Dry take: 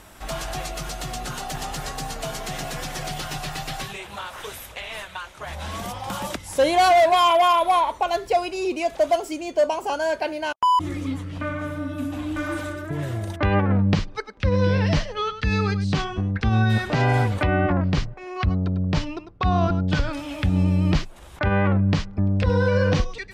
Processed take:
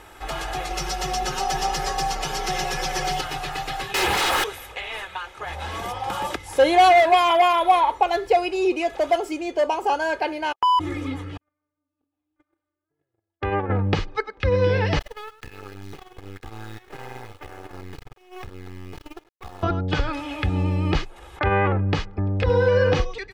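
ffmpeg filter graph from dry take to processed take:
-filter_complex "[0:a]asettb=1/sr,asplit=3[a][b][c];[a]atrim=end=0.704[d];[b]atrim=start=0.7:end=3.21,asetpts=PTS-STARTPTS,afade=t=in:d=0.004:c=qsin,afade=t=out:st=2.506:d=0.004:c=qsin,equalizer=f=5.5k:w=3.2:g=8.5,aecho=1:1:5.3:0.97,atrim=end_sample=110691[e];[c]atrim=start=3.206[f];[d][e]acrossfade=d=0.004:c1=hsin:c2=qsin[g];[g][f]acrossfade=d=0.004:c1=qsin:c2=hsin,asettb=1/sr,asplit=3[h][i][j];[h]atrim=end=3.944[k];[i]atrim=start=3.94:end=4.44,asetpts=PTS-STARTPTS,afade=t=in:d=0.004:c=qsin,afade=t=out:st=0.496:d=0.004:c=qsin,highshelf=f=12k:g=9.5,aeval=exprs='0.106*sin(PI/2*7.08*val(0)/0.106)':c=same[l];[j]atrim=start=4.436[m];[k][l]acrossfade=d=0.004:c1=hsin:c2=qsin[n];[n][m]acrossfade=d=0.004:c1=qsin:c2=hsin,asettb=1/sr,asplit=3[o][p][q];[o]atrim=end=11.374[r];[p]atrim=start=11.37:end=13.7,asetpts=PTS-STARTPTS,afade=t=in:d=0.004:c=qsin,afade=t=out:st=2.326:d=0.004:c=qsin,agate=range=-57dB:threshold=-21dB:ratio=16:release=100:detection=peak,acompressor=threshold=-25dB:ratio=3:attack=3.2:release=140:knee=1:detection=peak,equalizer=f=380:t=o:w=2.7:g=4[s];[q]atrim=start=13.696[t];[r][s]acrossfade=d=0.004:c1=hsin:c2=qsin[u];[u][t]acrossfade=d=0.004:c1=qsin:c2=hsin,asettb=1/sr,asplit=3[v][w][x];[v]atrim=end=14.994[y];[w]atrim=start=14.99:end=19.63,asetpts=PTS-STARTPTS,afade=t=in:d=0.004:c=qsin,afade=t=out:st=4.636:d=0.004:c=qsin,acompressor=threshold=-28dB:ratio=12:attack=3.2:release=140:knee=1:detection=peak,acrusher=bits=4:dc=4:mix=0:aa=0.000001,agate=range=-17dB:threshold=-35dB:ratio=16:release=100:detection=peak[z];[x]atrim=start=19.626[aa];[y][z]acrossfade=d=0.004:c1=hsin:c2=qsin[ab];[ab][aa]acrossfade=d=0.004:c1=qsin:c2=hsin,bass=f=250:g=-6,treble=f=4k:g=-8,aecho=1:1:2.4:0.5,volume=2.5dB"

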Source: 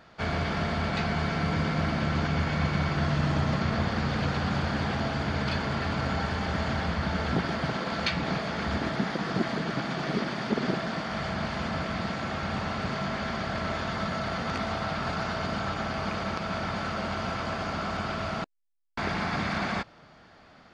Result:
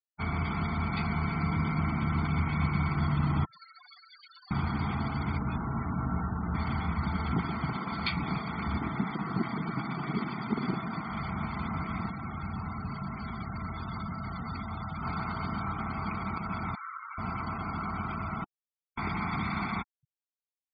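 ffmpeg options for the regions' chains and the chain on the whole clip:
-filter_complex "[0:a]asettb=1/sr,asplit=3[a][b][c];[a]atrim=end=3.454[d];[b]atrim=start=3.45:end=4.51,asetpts=PTS-STARTPTS,afade=t=in:d=0.004:c=qsin,afade=t=out:st=1.056:d=0.004:c=qsin,aderivative,aecho=1:1:6.8:0.96,atrim=end_sample=46746[e];[c]atrim=start=4.506[f];[d][e]acrossfade=d=0.004:c1=hsin:c2=qsin[g];[g][f]acrossfade=d=0.004:c1=qsin:c2=hsin,asettb=1/sr,asplit=3[h][i][j];[h]atrim=end=5.384[k];[i]atrim=start=5.38:end=6.55,asetpts=PTS-STARTPTS,afade=t=in:d=0.004:c=qsin,afade=t=out:st=1.166:d=0.004:c=qsin,lowpass=f=1.1k:p=1,asplit=2[l][m];[m]adelay=17,volume=-5dB[n];[l][n]amix=inputs=2:normalize=0,atrim=end_sample=51597[o];[j]atrim=start=6.546[p];[k][o]acrossfade=d=0.004:c1=hsin:c2=qsin[q];[q][p]acrossfade=d=0.004:c1=qsin:c2=hsin,asettb=1/sr,asplit=3[r][s][t];[r]atrim=end=12.094[u];[s]atrim=start=12.09:end=15.03,asetpts=PTS-STARTPTS,afade=t=in:d=0.004:c=qsin,afade=t=out:st=2.936:d=0.004:c=qsin,acrossover=split=170|3000[v][w][x];[w]acompressor=threshold=-33dB:ratio=4:attack=3.2:release=140:knee=2.83:detection=peak[y];[v][y][x]amix=inputs=3:normalize=0,aeval=exprs='clip(val(0),-1,0.0376)':c=same[z];[t]atrim=start=15.026[aa];[u][z]acrossfade=d=0.004:c1=hsin:c2=qsin[ab];[ab][aa]acrossfade=d=0.004:c1=qsin:c2=hsin,asettb=1/sr,asplit=3[ac][ad][ae];[ac]atrim=end=16.754[af];[ad]atrim=start=16.75:end=17.18,asetpts=PTS-STARTPTS,afade=t=in:d=0.004:c=qsin,afade=t=out:st=0.426:d=0.004:c=qsin,highpass=f=1.1k:w=0.5412,highpass=f=1.1k:w=1.3066,highshelf=f=3.2k:g=-9[ag];[ae]atrim=start=17.176[ah];[af][ag]acrossfade=d=0.004:c1=hsin:c2=qsin[ai];[ai][ah]acrossfade=d=0.004:c1=qsin:c2=hsin,afftfilt=real='re*gte(hypot(re,im),0.0224)':imag='im*gte(hypot(re,im),0.0224)':win_size=1024:overlap=0.75,lowpass=4.8k,aecho=1:1:0.9:0.87,volume=-5.5dB"

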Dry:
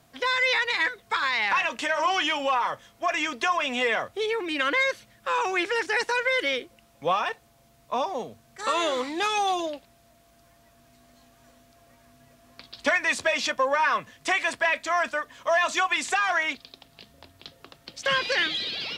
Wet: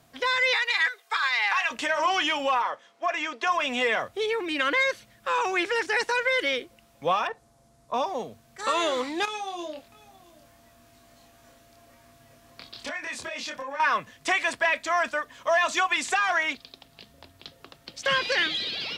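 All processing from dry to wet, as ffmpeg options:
-filter_complex "[0:a]asettb=1/sr,asplit=3[a][b][c];[a]atrim=end=0.544[d];[b]atrim=start=0.54:end=1.71,asetpts=PTS-STARTPTS,afade=t=in:d=0.004:c=qsin,afade=t=out:st=1.166:d=0.004:c=qsin,highpass=810,aecho=1:1:2.5:0.5,atrim=end_sample=51597[e];[c]atrim=start=1.706[f];[d][e]acrossfade=d=0.004:c1=hsin:c2=qsin[g];[g][f]acrossfade=d=0.004:c1=qsin:c2=hsin,asettb=1/sr,asplit=3[h][i][j];[h]atrim=end=2.624[k];[i]atrim=start=2.62:end=3.47,asetpts=PTS-STARTPTS,afade=t=in:d=0.004:c=qsin,afade=t=out:st=0.846:d=0.004:c=qsin,highpass=370,lowpass=6.2k,equalizer=f=4.6k:t=o:w=2.6:g=-4[l];[j]atrim=start=3.466[m];[k][l]acrossfade=d=0.004:c1=hsin:c2=qsin[n];[n][m]acrossfade=d=0.004:c1=qsin:c2=hsin,asettb=1/sr,asplit=3[o][p][q];[o]atrim=end=7.274[r];[p]atrim=start=7.27:end=7.94,asetpts=PTS-STARTPTS,afade=t=in:d=0.004:c=qsin,afade=t=out:st=0.666:d=0.004:c=qsin,lowpass=f=11k:w=0.5412,lowpass=f=11k:w=1.3066,acrossover=split=2800[s][t];[t]acompressor=threshold=-57dB:ratio=4:attack=1:release=60[u];[s][u]amix=inputs=2:normalize=0,equalizer=f=2.7k:t=o:w=1.3:g=-9[v];[q]atrim=start=7.936[w];[r][v]acrossfade=d=0.004:c1=hsin:c2=qsin[x];[x][w]acrossfade=d=0.004:c1=qsin:c2=hsin,asettb=1/sr,asplit=3[y][z][aa];[y]atrim=end=9.254[ab];[z]atrim=start=9.25:end=13.8,asetpts=PTS-STARTPTS,afade=t=in:d=0.004:c=qsin,afade=t=out:st=4.546:d=0.004:c=qsin,acompressor=threshold=-35dB:ratio=4:attack=3.2:release=140:knee=1:detection=peak,asplit=2[ac][ad];[ad]adelay=26,volume=-2dB[ae];[ac][ae]amix=inputs=2:normalize=0,atrim=end_sample=200655,aecho=1:1:671:0.0841,atrim=end_sample=200655[af];[aa]atrim=start=13.796[ag];[ab][af]acrossfade=d=0.004:c1=hsin:c2=qsin[ah];[ah][ag]acrossfade=d=0.004:c1=qsin:c2=hsin"

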